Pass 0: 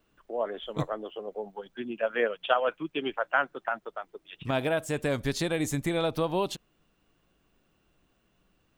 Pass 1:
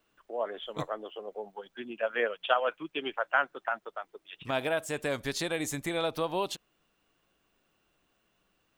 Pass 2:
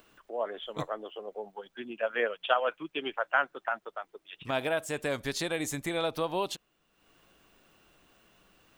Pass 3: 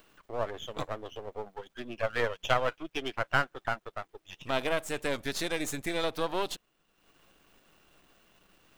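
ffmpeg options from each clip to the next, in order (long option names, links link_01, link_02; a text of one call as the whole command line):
ffmpeg -i in.wav -af "lowshelf=frequency=310:gain=-10.5" out.wav
ffmpeg -i in.wav -af "acompressor=mode=upward:threshold=-52dB:ratio=2.5" out.wav
ffmpeg -i in.wav -af "aeval=exprs='if(lt(val(0),0),0.251*val(0),val(0))':channel_layout=same,volume=3dB" out.wav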